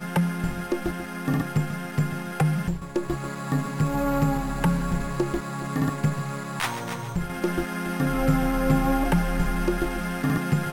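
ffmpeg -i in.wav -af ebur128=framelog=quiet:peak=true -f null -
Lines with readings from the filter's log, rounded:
Integrated loudness:
  I:         -26.3 LUFS
  Threshold: -36.3 LUFS
Loudness range:
  LRA:         2.9 LU
  Threshold: -46.4 LUFS
  LRA low:   -27.9 LUFS
  LRA high:  -24.9 LUFS
True peak:
  Peak:       -8.4 dBFS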